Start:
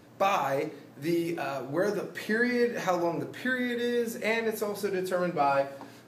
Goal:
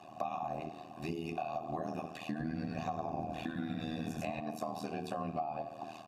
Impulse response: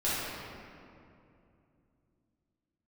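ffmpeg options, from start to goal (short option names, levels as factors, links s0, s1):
-filter_complex "[0:a]highpass=140,aecho=1:1:1.1:0.81,asettb=1/sr,asplit=3[s0][s1][s2];[s0]atrim=end=2.264[s3];[s1]atrim=start=2.26:end=4.4,asetpts=PTS-STARTPTS,afade=t=in:d=0.004:c=qsin,afade=t=out:st=2.136:d=0.004:c=qsin,asplit=6[s4][s5][s6][s7][s8][s9];[s5]adelay=100,afreqshift=-68,volume=0.668[s10];[s6]adelay=200,afreqshift=-136,volume=0.24[s11];[s7]adelay=300,afreqshift=-204,volume=0.0871[s12];[s8]adelay=400,afreqshift=-272,volume=0.0313[s13];[s9]adelay=500,afreqshift=-340,volume=0.0112[s14];[s4][s10][s11][s12][s13][s14]amix=inputs=6:normalize=0,atrim=end_sample=94374[s15];[s2]atrim=start=4.396[s16];[s3][s15]acrossfade=d=0.004:c1=hsin:c2=qsin[s17];[s17][s16]acrossfade=d=0.004:c1=qsin:c2=hsin,acrossover=split=280[s18][s19];[s19]acompressor=threshold=0.0112:ratio=6[s20];[s18][s20]amix=inputs=2:normalize=0,bass=f=250:g=15,treble=f=4000:g=11,tremolo=f=79:d=1,asplit=3[s21][s22][s23];[s21]bandpass=f=730:t=q:w=8,volume=1[s24];[s22]bandpass=f=1090:t=q:w=8,volume=0.501[s25];[s23]bandpass=f=2440:t=q:w=8,volume=0.355[s26];[s24][s25][s26]amix=inputs=3:normalize=0,acompressor=threshold=0.00316:ratio=5,volume=6.68"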